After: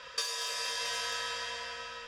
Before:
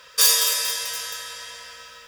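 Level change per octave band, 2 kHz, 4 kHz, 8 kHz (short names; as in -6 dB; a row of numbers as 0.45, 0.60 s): -5.5, -11.0, -17.5 dB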